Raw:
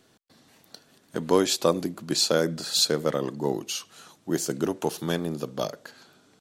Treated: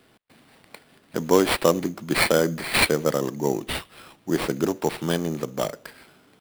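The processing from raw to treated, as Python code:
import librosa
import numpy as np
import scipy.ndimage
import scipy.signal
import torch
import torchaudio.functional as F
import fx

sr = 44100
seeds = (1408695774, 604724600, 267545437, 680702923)

y = fx.sample_hold(x, sr, seeds[0], rate_hz=6500.0, jitter_pct=0)
y = F.gain(torch.from_numpy(y), 3.0).numpy()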